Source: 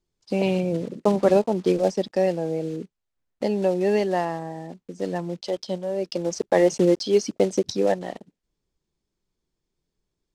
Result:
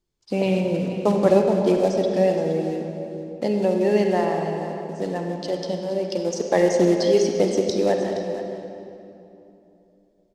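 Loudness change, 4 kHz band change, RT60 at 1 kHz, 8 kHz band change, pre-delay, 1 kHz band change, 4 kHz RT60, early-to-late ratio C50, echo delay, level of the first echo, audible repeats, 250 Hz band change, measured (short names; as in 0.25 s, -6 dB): +1.5 dB, +1.5 dB, 2.7 s, +1.0 dB, 39 ms, +2.0 dB, 2.0 s, 2.5 dB, 0.471 s, -13.0 dB, 1, +2.5 dB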